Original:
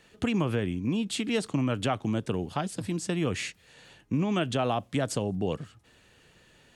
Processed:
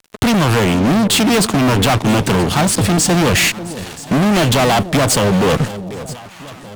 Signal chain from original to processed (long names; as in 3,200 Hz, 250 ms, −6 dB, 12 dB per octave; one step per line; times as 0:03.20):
fuzz pedal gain 42 dB, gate −51 dBFS
delay that swaps between a low-pass and a high-pass 489 ms, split 840 Hz, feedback 67%, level −13.5 dB
level +1.5 dB